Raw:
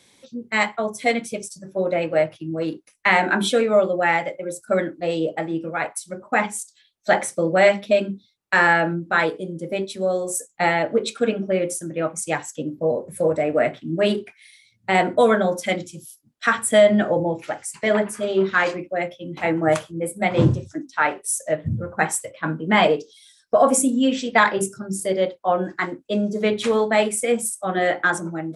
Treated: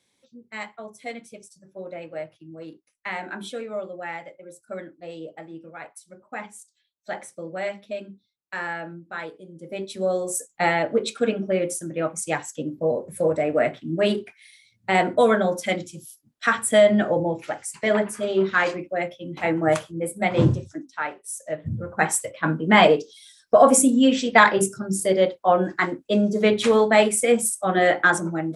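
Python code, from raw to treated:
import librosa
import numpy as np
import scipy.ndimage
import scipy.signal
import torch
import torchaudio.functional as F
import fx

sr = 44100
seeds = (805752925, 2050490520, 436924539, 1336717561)

y = fx.gain(x, sr, db=fx.line((9.46, -14.0), (9.98, -1.5), (20.6, -1.5), (21.19, -11.0), (22.21, 2.0)))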